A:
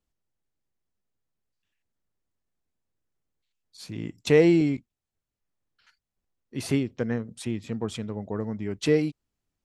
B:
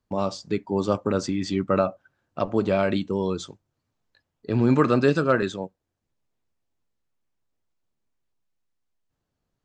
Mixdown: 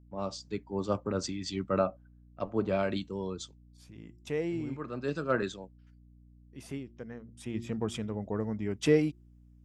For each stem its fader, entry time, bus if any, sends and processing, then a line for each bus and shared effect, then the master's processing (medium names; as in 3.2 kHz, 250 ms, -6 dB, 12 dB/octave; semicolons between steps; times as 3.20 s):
7.32 s -14.5 dB -> 7.57 s -2 dB, 0.00 s, no send, band-stop 4.2 kHz, Q 6; de-hum 116.6 Hz, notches 3
-7.5 dB, 0.00 s, no send, three bands expanded up and down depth 100%; auto duck -18 dB, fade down 0.35 s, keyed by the first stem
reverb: none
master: hum 60 Hz, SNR 23 dB